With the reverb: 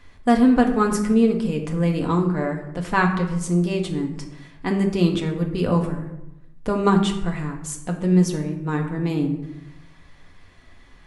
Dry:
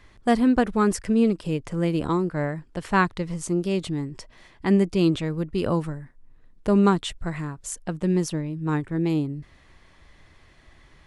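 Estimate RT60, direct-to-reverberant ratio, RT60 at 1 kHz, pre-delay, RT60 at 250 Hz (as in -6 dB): 0.90 s, 1.5 dB, 0.85 s, 4 ms, 1.1 s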